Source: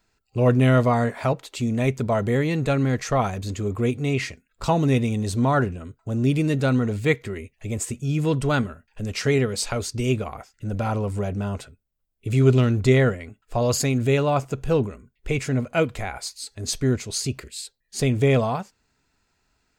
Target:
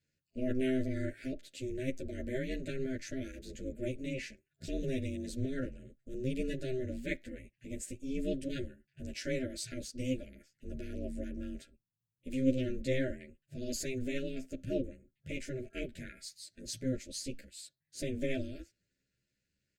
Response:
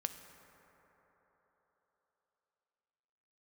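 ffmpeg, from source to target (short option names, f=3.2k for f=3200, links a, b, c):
-filter_complex "[0:a]afftfilt=real='re*(1-between(b*sr/4096,530,1500))':imag='im*(1-between(b*sr/4096,530,1500))':win_size=4096:overlap=0.75,aeval=exprs='val(0)*sin(2*PI*130*n/s)':c=same,asplit=2[a][b];[b]adelay=10.7,afreqshift=0.45[c];[a][c]amix=inputs=2:normalize=1,volume=-8dB"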